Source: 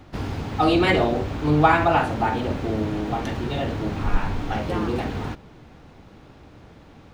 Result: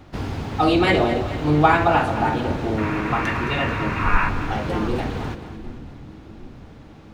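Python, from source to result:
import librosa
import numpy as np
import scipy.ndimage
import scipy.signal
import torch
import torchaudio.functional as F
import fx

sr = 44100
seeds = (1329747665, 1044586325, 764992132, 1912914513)

y = fx.spec_box(x, sr, start_s=2.78, length_s=1.51, low_hz=920.0, high_hz=2800.0, gain_db=11)
y = fx.vibrato(y, sr, rate_hz=2.3, depth_cents=10.0)
y = fx.echo_split(y, sr, split_hz=330.0, low_ms=764, high_ms=219, feedback_pct=52, wet_db=-12.0)
y = y * librosa.db_to_amplitude(1.0)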